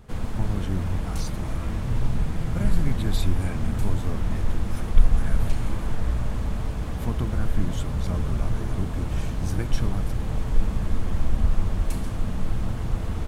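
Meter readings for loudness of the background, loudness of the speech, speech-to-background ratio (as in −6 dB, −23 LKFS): −29.0 LKFS, −34.0 LKFS, −5.0 dB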